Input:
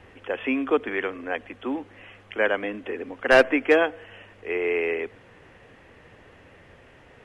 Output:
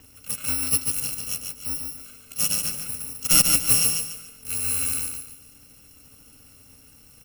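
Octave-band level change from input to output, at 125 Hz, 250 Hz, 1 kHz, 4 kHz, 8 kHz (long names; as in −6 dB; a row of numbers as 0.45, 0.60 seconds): +10.5 dB, −10.0 dB, −10.5 dB, +9.0 dB, can't be measured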